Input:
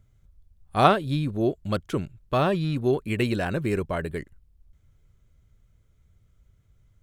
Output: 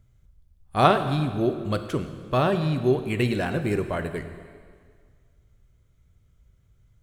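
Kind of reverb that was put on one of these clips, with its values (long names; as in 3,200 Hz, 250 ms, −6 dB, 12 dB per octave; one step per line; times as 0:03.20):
dense smooth reverb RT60 1.9 s, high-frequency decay 0.95×, DRR 8 dB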